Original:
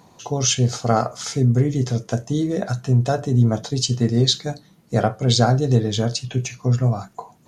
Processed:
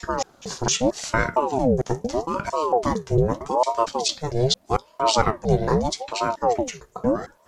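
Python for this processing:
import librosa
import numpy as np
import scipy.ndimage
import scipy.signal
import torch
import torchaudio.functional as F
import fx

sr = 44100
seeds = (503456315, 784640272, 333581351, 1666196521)

y = fx.block_reorder(x, sr, ms=227.0, group=2)
y = fx.ring_lfo(y, sr, carrier_hz=530.0, swing_pct=55, hz=0.8)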